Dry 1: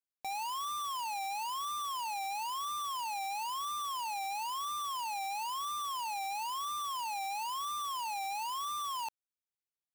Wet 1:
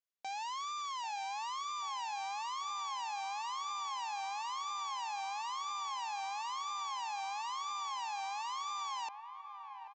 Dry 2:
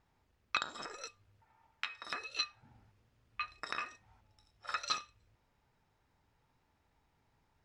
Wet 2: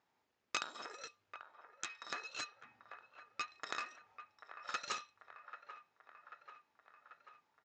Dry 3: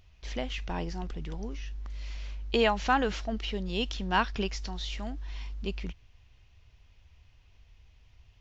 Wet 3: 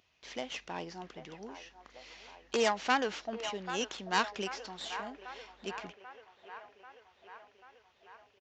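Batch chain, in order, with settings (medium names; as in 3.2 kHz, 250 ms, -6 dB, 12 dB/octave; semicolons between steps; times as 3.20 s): tracing distortion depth 0.34 ms; resampled via 16 kHz; Bessel high-pass 330 Hz, order 2; on a send: feedback echo behind a band-pass 789 ms, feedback 64%, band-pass 1 kHz, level -10 dB; on the sum: trim -2.5 dB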